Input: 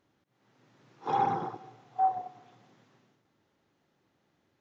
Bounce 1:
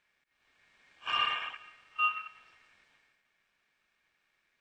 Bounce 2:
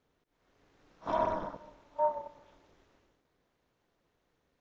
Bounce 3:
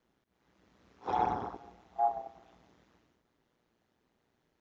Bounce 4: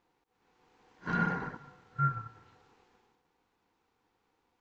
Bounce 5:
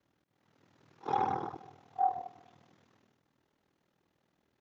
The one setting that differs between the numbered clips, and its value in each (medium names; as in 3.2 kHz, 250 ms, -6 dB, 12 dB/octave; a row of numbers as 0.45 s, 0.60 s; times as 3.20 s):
ring modulator, frequency: 2 kHz, 160 Hz, 60 Hz, 620 Hz, 20 Hz